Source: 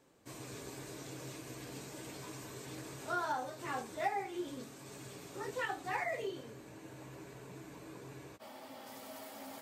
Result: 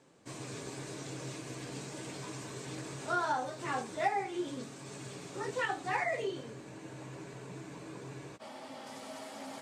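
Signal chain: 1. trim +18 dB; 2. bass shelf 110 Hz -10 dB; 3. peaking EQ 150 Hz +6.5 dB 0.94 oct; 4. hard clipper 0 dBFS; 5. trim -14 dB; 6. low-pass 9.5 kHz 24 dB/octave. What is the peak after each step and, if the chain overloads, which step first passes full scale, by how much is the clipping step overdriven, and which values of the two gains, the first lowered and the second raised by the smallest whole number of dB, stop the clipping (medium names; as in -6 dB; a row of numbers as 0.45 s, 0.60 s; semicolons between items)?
-4.5 dBFS, -5.0 dBFS, -4.5 dBFS, -4.5 dBFS, -18.5 dBFS, -18.5 dBFS; nothing clips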